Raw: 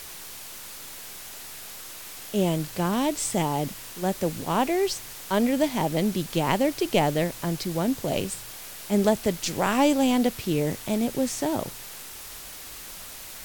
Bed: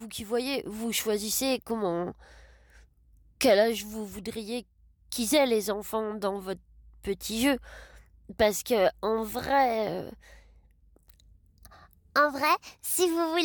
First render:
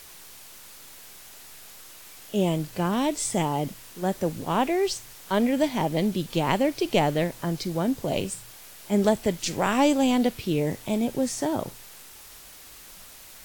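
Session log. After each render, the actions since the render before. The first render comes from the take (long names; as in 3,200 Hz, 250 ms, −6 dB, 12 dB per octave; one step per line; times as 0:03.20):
noise reduction from a noise print 6 dB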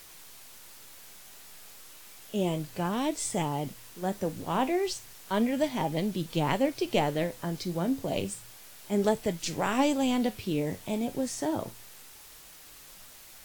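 flanger 0.32 Hz, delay 6 ms, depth 5.6 ms, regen +70%
bit-depth reduction 10 bits, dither triangular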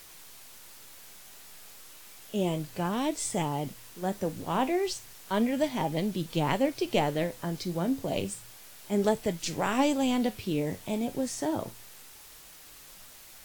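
no processing that can be heard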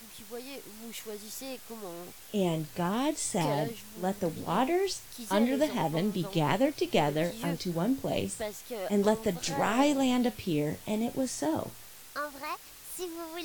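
mix in bed −13 dB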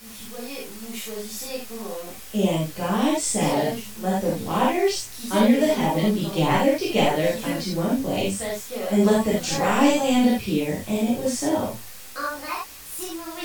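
reverb whose tail is shaped and stops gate 110 ms flat, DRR −7 dB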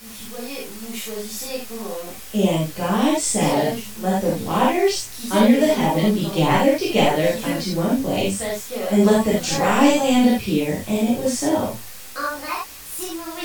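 level +3 dB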